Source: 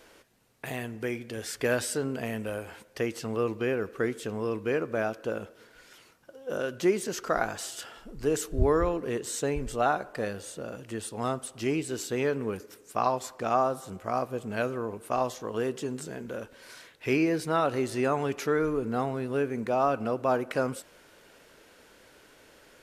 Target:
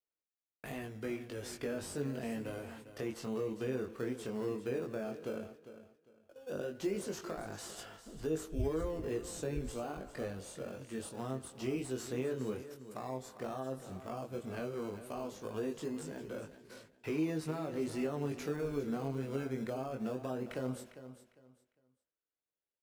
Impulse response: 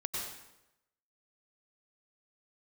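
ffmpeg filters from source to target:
-filter_complex "[0:a]asplit=2[link_01][link_02];[link_02]acrusher=samples=19:mix=1:aa=0.000001:lfo=1:lforange=11.4:lforate=0.22,volume=-8.5dB[link_03];[link_01][link_03]amix=inputs=2:normalize=0,alimiter=limit=-17dB:level=0:latency=1,flanger=delay=19:depth=4.5:speed=0.12,acrossover=split=460[link_04][link_05];[link_05]acompressor=threshold=-38dB:ratio=6[link_06];[link_04][link_06]amix=inputs=2:normalize=0,agate=range=-40dB:threshold=-50dB:ratio=16:detection=peak,aecho=1:1:402|804|1206:0.224|0.0537|0.0129,volume=-5dB"

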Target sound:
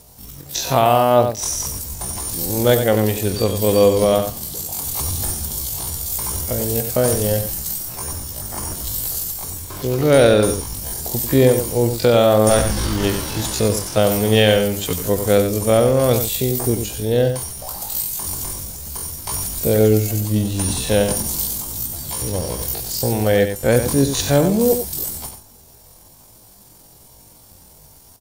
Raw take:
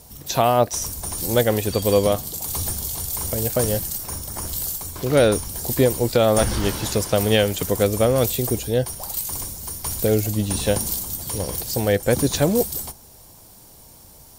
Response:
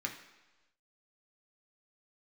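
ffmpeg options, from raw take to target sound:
-filter_complex "[0:a]asplit=2[link_01][link_02];[link_02]acrusher=bits=5:mix=0:aa=0.000001,volume=-9.5dB[link_03];[link_01][link_03]amix=inputs=2:normalize=0,atempo=0.51,aecho=1:1:93:0.376"

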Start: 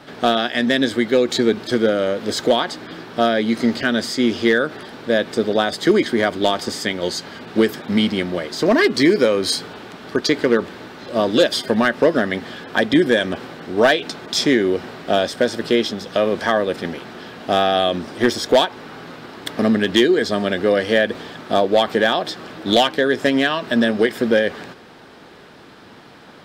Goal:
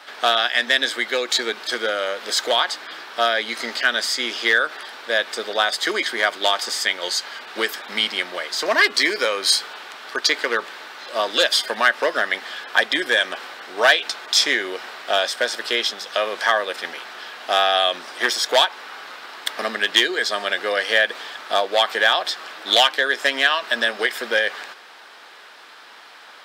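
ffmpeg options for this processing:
ffmpeg -i in.wav -af "highpass=960,volume=4dB" out.wav

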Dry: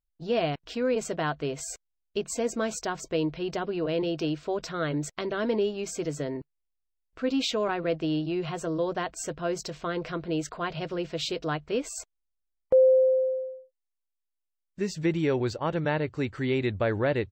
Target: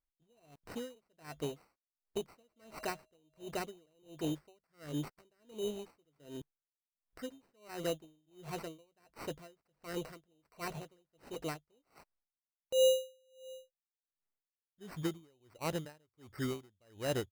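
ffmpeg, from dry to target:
ffmpeg -i in.wav -filter_complex "[0:a]asettb=1/sr,asplit=3[link_01][link_02][link_03];[link_01]atrim=end=2.384[link_04];[link_02]atrim=start=2.38:end=3.48,asetpts=PTS-STARTPTS,afade=type=in:duration=0.004:curve=qsin,afade=type=out:start_time=1.096:duration=0.004:curve=qsin,aeval=exprs='val(0)+0.00708*sin(2*PI*630*n/s)':channel_layout=same[link_05];[link_03]atrim=start=3.476[link_06];[link_04][link_05]acrossfade=duration=0.004:curve1=hsin:curve2=qsin[link_07];[link_07][link_06]acrossfade=duration=0.004:curve1=qsin:curve2=hsin,acrusher=samples=13:mix=1:aa=0.000001,aeval=exprs='val(0)*pow(10,-39*(0.5-0.5*cos(2*PI*1.4*n/s))/20)':channel_layout=same,volume=-6dB" out.wav

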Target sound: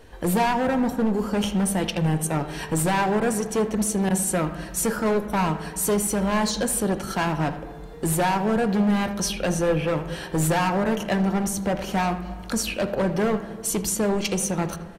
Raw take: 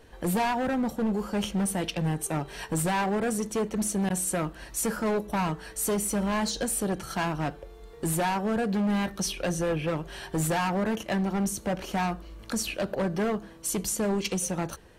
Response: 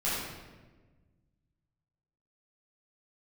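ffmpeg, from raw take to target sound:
-filter_complex "[0:a]asplit=2[link_01][link_02];[link_02]adelay=80,highpass=300,lowpass=3400,asoftclip=type=hard:threshold=-29.5dB,volume=-12dB[link_03];[link_01][link_03]amix=inputs=2:normalize=0,asplit=2[link_04][link_05];[1:a]atrim=start_sample=2205,asetrate=31311,aresample=44100,lowpass=2500[link_06];[link_05][link_06]afir=irnorm=-1:irlink=0,volume=-21.5dB[link_07];[link_04][link_07]amix=inputs=2:normalize=0,volume=4dB"

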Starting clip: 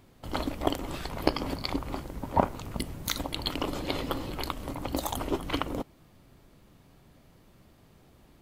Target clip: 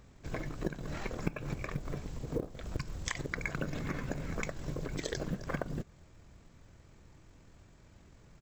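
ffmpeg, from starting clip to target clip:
ffmpeg -i in.wav -af "acompressor=threshold=-32dB:ratio=10,asetrate=22696,aresample=44100,atempo=1.94306,acrusher=bits=8:mode=log:mix=0:aa=0.000001,volume=1dB" out.wav

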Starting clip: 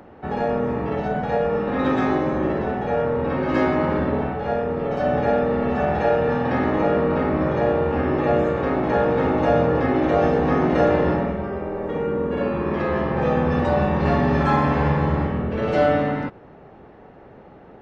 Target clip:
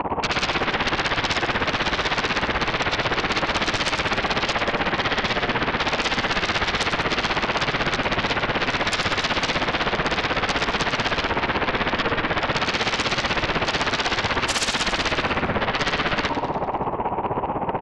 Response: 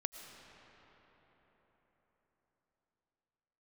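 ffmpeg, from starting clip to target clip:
-filter_complex "[0:a]asplit=2[link_01][link_02];[link_02]asoftclip=type=hard:threshold=-19.5dB,volume=-12dB[link_03];[link_01][link_03]amix=inputs=2:normalize=0,acompressor=threshold=-29dB:ratio=8,lowpass=frequency=1000:width_type=q:width=7.6,aemphasis=mode=reproduction:type=75kf[link_04];[1:a]atrim=start_sample=2205,afade=type=out:start_time=0.19:duration=0.01,atrim=end_sample=8820[link_05];[link_04][link_05]afir=irnorm=-1:irlink=0,aeval=exprs='0.15*sin(PI/2*7.08*val(0)/0.15)':channel_layout=same,tremolo=f=16:d=0.95,aecho=1:1:97|194|291|388|485|582|679:0.299|0.173|0.1|0.0582|0.0338|0.0196|0.0114"

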